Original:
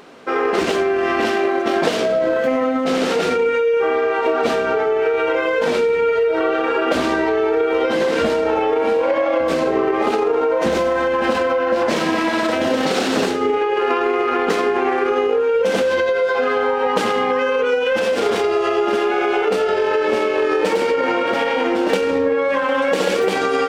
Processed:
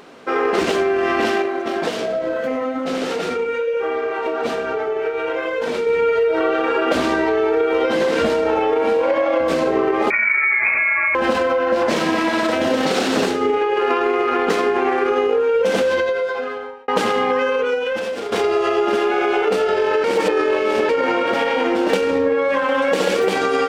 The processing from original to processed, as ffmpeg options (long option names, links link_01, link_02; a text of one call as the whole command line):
ffmpeg -i in.wav -filter_complex "[0:a]asettb=1/sr,asplit=3[link_01][link_02][link_03];[link_01]atrim=end=1.424[link_04];[link_02]atrim=start=1.42:end=5.87,asetpts=PTS-STARTPTS,afade=type=in:duration=0.004:curve=qsin,afade=type=out:start_time=4.446:duration=0.004:curve=qsin,flanger=delay=2.2:depth=7.8:regen=-73:speed=1.2:shape=sinusoidal[link_05];[link_03]atrim=start=5.866[link_06];[link_04][link_05]acrossfade=duration=0.004:curve1=hsin:curve2=qsin[link_07];[link_07][link_06]acrossfade=duration=0.004:curve1=qsin:curve2=hsin,asettb=1/sr,asplit=3[link_08][link_09][link_10];[link_08]atrim=end=10.104[link_11];[link_09]atrim=start=10.1:end=11.15,asetpts=PTS-STARTPTS,afade=type=in:duration=0.004:curve=qsin,afade=type=out:start_time=1.046:duration=0.004:curve=qsin,lowpass=frequency=2300:width_type=q:width=0.5098,lowpass=frequency=2300:width_type=q:width=0.6013,lowpass=frequency=2300:width_type=q:width=0.9,lowpass=frequency=2300:width_type=q:width=2.563,afreqshift=-2700[link_12];[link_10]atrim=start=11.146[link_13];[link_11][link_12]acrossfade=duration=0.004:curve1=hsin:curve2=qsin[link_14];[link_14][link_13]acrossfade=duration=0.004:curve1=qsin:curve2=hsin,asplit=5[link_15][link_16][link_17][link_18][link_19];[link_15]atrim=end=16.88,asetpts=PTS-STARTPTS,afade=type=out:start_time=15.9:duration=0.98[link_20];[link_16]atrim=start=16.88:end=18.32,asetpts=PTS-STARTPTS,afade=type=in:duration=0.004:curve=hsin,afade=type=out:start_time=0.52:duration=0.92:silence=0.316228[link_21];[link_17]atrim=start=18.32:end=20.042,asetpts=PTS-STARTPTS,afade=type=in:duration=0.004:curve=hsin:silence=0.316228[link_22];[link_18]atrim=start=20.038:end=20.892,asetpts=PTS-STARTPTS,areverse[link_23];[link_19]atrim=start=20.888[link_24];[link_20][link_21][link_22]concat=n=3:v=0:a=1[link_25];[link_25][link_23]acrossfade=duration=0.004:curve1=hsin:curve2=hsin[link_26];[link_26][link_24]acrossfade=duration=0.004:curve1=hsin:curve2=hsin" out.wav